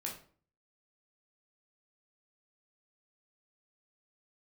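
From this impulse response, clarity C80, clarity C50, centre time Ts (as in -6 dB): 12.0 dB, 7.0 dB, 25 ms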